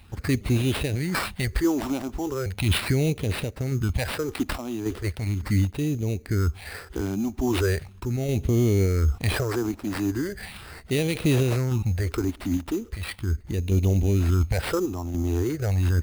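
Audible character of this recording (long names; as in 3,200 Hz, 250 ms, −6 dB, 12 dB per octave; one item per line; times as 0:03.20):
sample-and-hold tremolo
phaser sweep stages 6, 0.38 Hz, lowest notch 120–1,500 Hz
aliases and images of a low sample rate 6,500 Hz, jitter 0%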